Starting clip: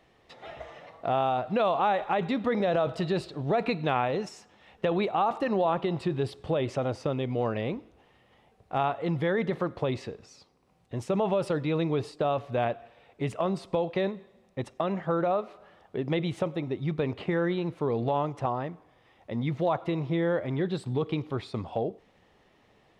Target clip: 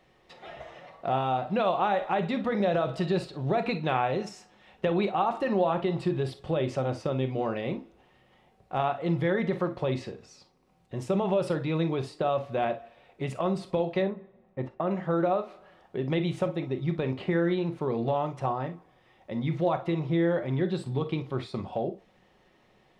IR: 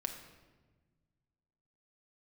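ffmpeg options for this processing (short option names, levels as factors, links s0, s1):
-filter_complex "[0:a]asettb=1/sr,asplit=3[s0][s1][s2];[s0]atrim=end=14.024[s3];[s1]atrim=start=14.02:end=14.91,asetpts=PTS-STARTPTS,afade=t=in:d=0.004:c=qsin,afade=t=out:st=0.886:d=0.004:c=qsin,lowpass=1800[s4];[s2]atrim=start=14.906[s5];[s3][s4]acrossfade=d=0.004:c1=hsin:c2=qsin[s6];[s6][s5]acrossfade=d=0.004:c1=qsin:c2=hsin[s7];[1:a]atrim=start_sample=2205,atrim=end_sample=3087[s8];[s7][s8]afir=irnorm=-1:irlink=0"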